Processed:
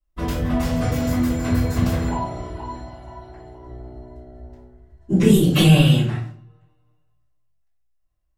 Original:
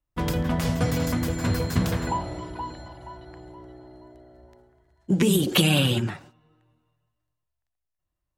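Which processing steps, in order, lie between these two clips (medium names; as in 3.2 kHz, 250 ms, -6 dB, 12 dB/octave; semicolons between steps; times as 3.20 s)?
3.66–5.80 s: bass shelf 230 Hz +10 dB; simulated room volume 37 m³, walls mixed, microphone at 2.7 m; trim -12 dB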